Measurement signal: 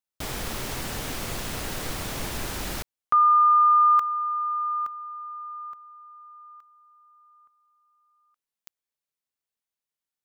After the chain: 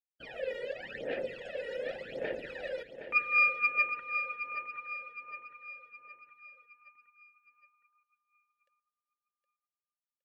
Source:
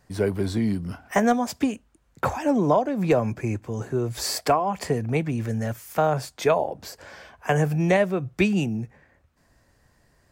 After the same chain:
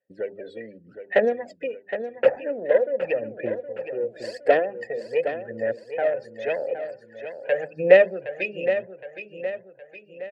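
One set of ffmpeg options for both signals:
-filter_complex "[0:a]bandreject=f=50:t=h:w=6,bandreject=f=100:t=h:w=6,bandreject=f=150:t=h:w=6,bandreject=f=200:t=h:w=6,bandreject=f=250:t=h:w=6,bandreject=f=300:t=h:w=6,bandreject=f=350:t=h:w=6,bandreject=f=400:t=h:w=6,aphaser=in_gain=1:out_gain=1:delay=2.1:decay=0.64:speed=0.88:type=sinusoidal,equalizer=f=90:w=3.5:g=-13,bandreject=f=6000:w=17,afftdn=nr=23:nf=-33,aeval=exprs='0.944*(cos(1*acos(clip(val(0)/0.944,-1,1)))-cos(1*PI/2))+0.237*(cos(2*acos(clip(val(0)/0.944,-1,1)))-cos(2*PI/2))+0.0944*(cos(6*acos(clip(val(0)/0.944,-1,1)))-cos(6*PI/2))':c=same,asplit=3[s0][s1][s2];[s0]bandpass=f=530:t=q:w=8,volume=1[s3];[s1]bandpass=f=1840:t=q:w=8,volume=0.501[s4];[s2]bandpass=f=2480:t=q:w=8,volume=0.355[s5];[s3][s4][s5]amix=inputs=3:normalize=0,asplit=2[s6][s7];[s7]aecho=0:1:766|1532|2298|3064|3830:0.316|0.149|0.0699|0.0328|0.0154[s8];[s6][s8]amix=inputs=2:normalize=0,volume=1.88"

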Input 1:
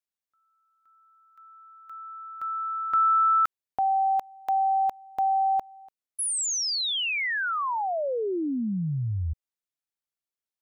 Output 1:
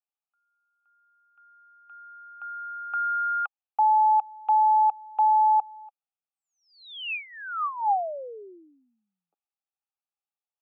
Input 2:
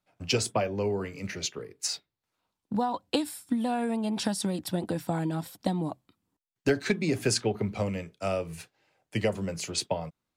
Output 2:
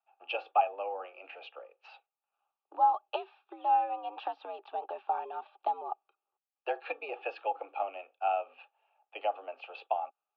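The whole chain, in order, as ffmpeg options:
-filter_complex "[0:a]asplit=3[s0][s1][s2];[s0]bandpass=f=730:t=q:w=8,volume=1[s3];[s1]bandpass=f=1090:t=q:w=8,volume=0.501[s4];[s2]bandpass=f=2440:t=q:w=8,volume=0.355[s5];[s3][s4][s5]amix=inputs=3:normalize=0,highpass=f=290:t=q:w=0.5412,highpass=f=290:t=q:w=1.307,lowpass=f=3400:t=q:w=0.5176,lowpass=f=3400:t=q:w=0.7071,lowpass=f=3400:t=q:w=1.932,afreqshift=89,volume=2.37"

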